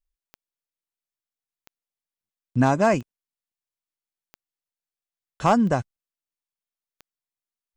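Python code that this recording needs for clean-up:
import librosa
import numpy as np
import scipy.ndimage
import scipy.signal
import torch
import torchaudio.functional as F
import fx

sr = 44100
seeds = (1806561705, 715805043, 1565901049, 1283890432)

y = fx.fix_declip(x, sr, threshold_db=-10.0)
y = fx.fix_declick_ar(y, sr, threshold=10.0)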